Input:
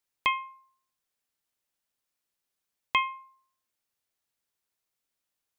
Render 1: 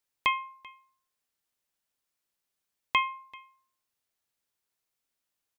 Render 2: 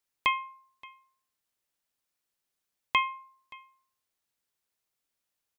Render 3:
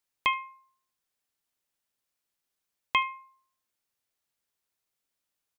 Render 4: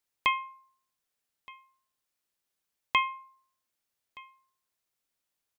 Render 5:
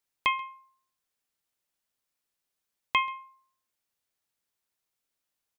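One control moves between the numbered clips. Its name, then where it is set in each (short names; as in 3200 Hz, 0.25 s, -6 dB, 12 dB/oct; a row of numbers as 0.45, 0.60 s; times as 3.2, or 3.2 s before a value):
echo, time: 388, 575, 75, 1221, 134 ms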